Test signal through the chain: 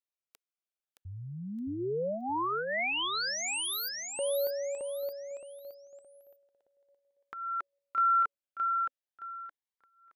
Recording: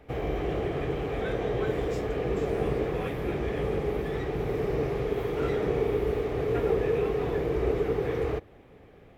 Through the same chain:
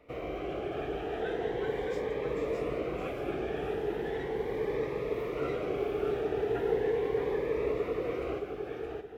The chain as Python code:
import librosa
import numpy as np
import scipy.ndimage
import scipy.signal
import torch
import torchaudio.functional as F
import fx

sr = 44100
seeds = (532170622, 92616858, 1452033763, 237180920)

y = fx.bass_treble(x, sr, bass_db=-12, treble_db=-7)
y = fx.echo_feedback(y, sr, ms=619, feedback_pct=32, wet_db=-4.0)
y = fx.notch_cascade(y, sr, direction='rising', hz=0.38)
y = F.gain(torch.from_numpy(y), -1.5).numpy()